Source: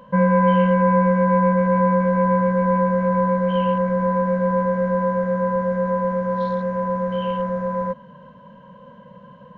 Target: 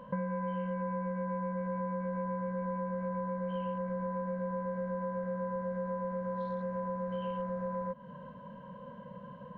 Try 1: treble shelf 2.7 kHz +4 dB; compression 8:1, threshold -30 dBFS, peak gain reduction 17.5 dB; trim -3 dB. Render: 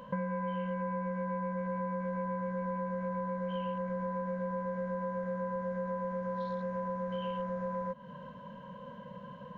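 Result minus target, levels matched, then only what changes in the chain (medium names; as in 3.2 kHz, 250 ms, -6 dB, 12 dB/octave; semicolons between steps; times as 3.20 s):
4 kHz band +5.5 dB
change: treble shelf 2.7 kHz -7 dB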